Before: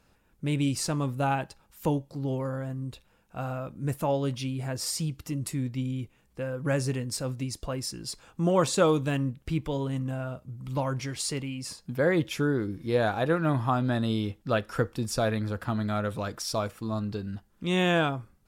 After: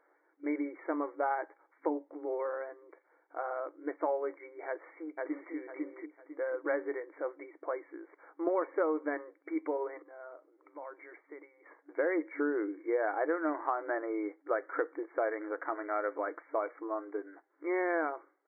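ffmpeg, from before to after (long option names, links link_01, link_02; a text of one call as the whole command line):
ffmpeg -i in.wav -filter_complex "[0:a]asplit=2[link_01][link_02];[link_02]afade=type=in:start_time=4.67:duration=0.01,afade=type=out:start_time=5.55:duration=0.01,aecho=0:1:500|1000|1500|2000:0.891251|0.267375|0.0802126|0.0240638[link_03];[link_01][link_03]amix=inputs=2:normalize=0,asettb=1/sr,asplit=3[link_04][link_05][link_06];[link_04]atrim=end=10.024[link_07];[link_05]atrim=start=10.02:end=11.63,asetpts=PTS-STARTPTS,afade=type=in:duration=0.004:curve=qsin,afade=type=out:start_time=1.606:duration=0.004:curve=qsin,acompressor=threshold=-40dB:ratio=5:attack=3.2:release=140:knee=1:detection=peak[link_08];[link_06]atrim=start=11.626[link_09];[link_07][link_08]acrossfade=duration=0.004:curve1=hsin:curve2=qsin[link_10];[link_10][link_09]acrossfade=duration=0.004:curve1=qsin:curve2=hsin,afftfilt=real='re*between(b*sr/4096,290,2300)':imag='im*between(b*sr/4096,290,2300)':win_size=4096:overlap=0.75,acompressor=threshold=-27dB:ratio=6" out.wav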